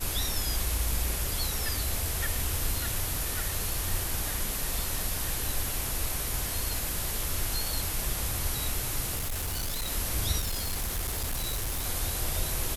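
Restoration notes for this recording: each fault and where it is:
0:09.15–0:09.91: clipping −28.5 dBFS
0:10.39–0:11.87: clipping −27.5 dBFS

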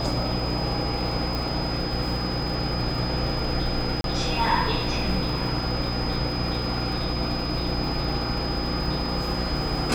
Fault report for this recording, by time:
surface crackle 200 per second −36 dBFS
mains hum 60 Hz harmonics 6 −30 dBFS
whistle 5,000 Hz −32 dBFS
0:01.35: click
0:04.01–0:04.04: drop-out 32 ms

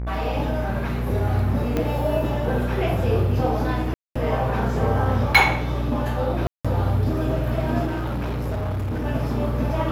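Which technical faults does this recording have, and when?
mains buzz 60 Hz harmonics 40 −27 dBFS
0:01.77: click −11 dBFS
0:03.94–0:04.16: drop-out 215 ms
0:06.47–0:06.65: drop-out 176 ms
0:07.86–0:09.06: clipping −23 dBFS

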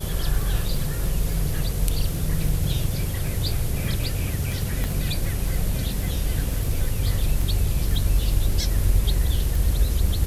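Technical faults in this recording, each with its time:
surface crackle 25 per second −26 dBFS
0:04.84: click −13 dBFS

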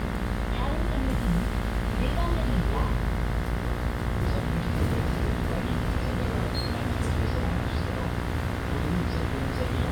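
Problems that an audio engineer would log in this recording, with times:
mains buzz 60 Hz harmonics 36 −32 dBFS

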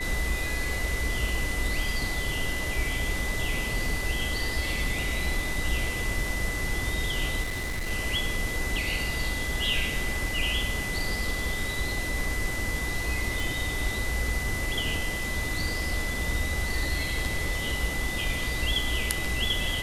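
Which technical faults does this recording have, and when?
whistle 2,000 Hz −32 dBFS
0:07.42–0:07.91: clipping −27.5 dBFS
0:13.40: click

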